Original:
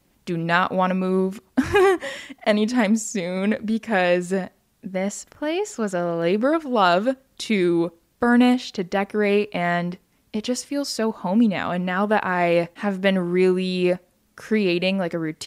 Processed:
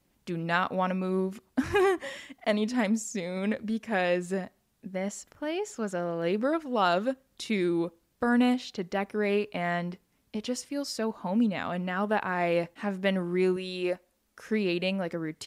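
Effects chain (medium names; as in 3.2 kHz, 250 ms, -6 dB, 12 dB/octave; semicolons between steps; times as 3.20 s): 13.56–14.46 s: peaking EQ 140 Hz -13 dB 1.1 oct; trim -7.5 dB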